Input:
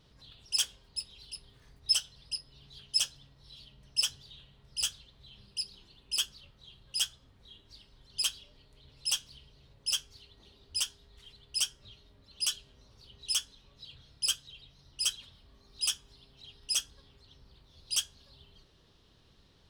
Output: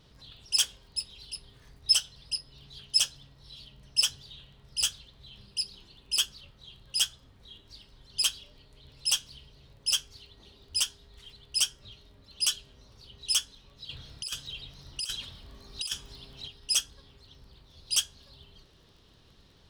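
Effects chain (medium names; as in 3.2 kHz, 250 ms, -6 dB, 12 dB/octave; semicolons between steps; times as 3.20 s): crackle 21 per s -55 dBFS; 13.89–16.48 s: compressor with a negative ratio -35 dBFS, ratio -0.5; trim +4 dB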